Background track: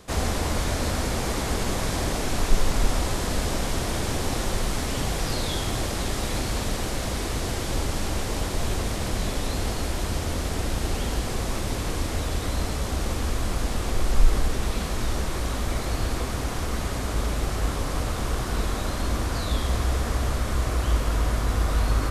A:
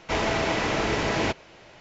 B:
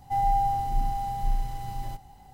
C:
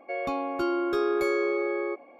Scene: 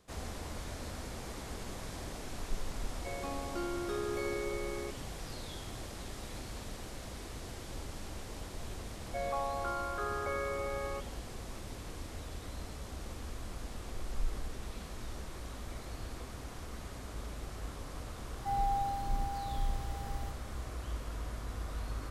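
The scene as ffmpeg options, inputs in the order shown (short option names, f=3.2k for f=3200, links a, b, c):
-filter_complex "[3:a]asplit=2[a][b];[0:a]volume=-16.5dB[c];[b]asuperpass=centerf=1000:order=8:qfactor=0.69[d];[a]atrim=end=2.19,asetpts=PTS-STARTPTS,volume=-11dB,afade=t=in:d=0.004:c=hsin,afade=t=out:st=2.186:d=0.004:c=hsin,adelay=2960[e];[d]atrim=end=2.19,asetpts=PTS-STARTPTS,volume=-3.5dB,afade=t=in:d=0.004:c=hsin,afade=t=out:st=2.186:d=0.004:c=hsin,adelay=9050[f];[2:a]atrim=end=2.33,asetpts=PTS-STARTPTS,volume=-8.5dB,afade=t=in:d=0.004:c=hsin,afade=t=out:st=2.326:d=0.004:c=hsin,adelay=18350[g];[c][e][f][g]amix=inputs=4:normalize=0"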